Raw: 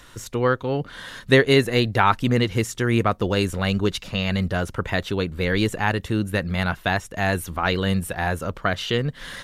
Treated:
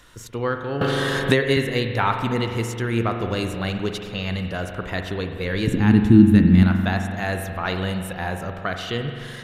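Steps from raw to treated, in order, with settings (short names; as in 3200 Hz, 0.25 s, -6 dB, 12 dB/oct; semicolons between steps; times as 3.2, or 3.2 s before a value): 5.67–6.63 resonant low shelf 390 Hz +12.5 dB, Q 3; spring tank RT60 2.2 s, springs 43 ms, chirp 60 ms, DRR 5 dB; 0.81–1.57 three-band squash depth 100%; gain -4 dB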